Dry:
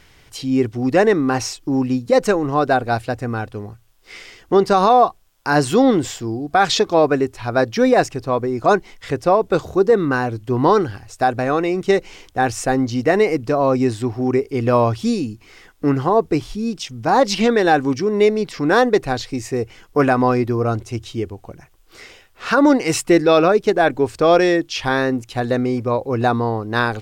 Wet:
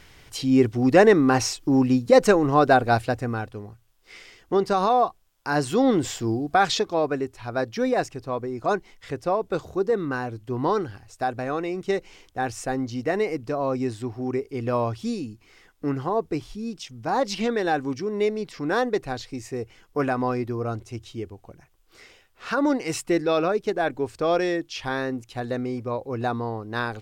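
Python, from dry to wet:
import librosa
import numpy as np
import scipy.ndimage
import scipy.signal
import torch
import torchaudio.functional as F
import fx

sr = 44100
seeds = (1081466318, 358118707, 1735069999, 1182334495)

y = fx.gain(x, sr, db=fx.line((3.0, -0.5), (3.64, -7.5), (5.73, -7.5), (6.31, 0.0), (6.91, -9.0)))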